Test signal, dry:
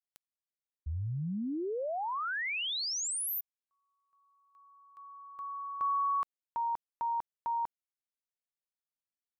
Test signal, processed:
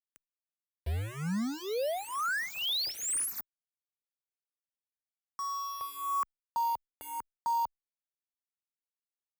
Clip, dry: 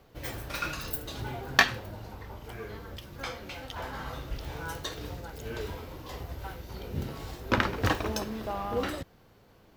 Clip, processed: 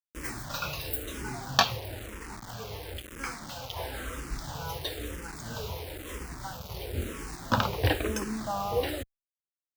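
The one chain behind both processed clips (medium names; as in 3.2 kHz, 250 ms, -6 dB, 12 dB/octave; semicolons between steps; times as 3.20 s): bit crusher 7-bit; barber-pole phaser -1 Hz; trim +3.5 dB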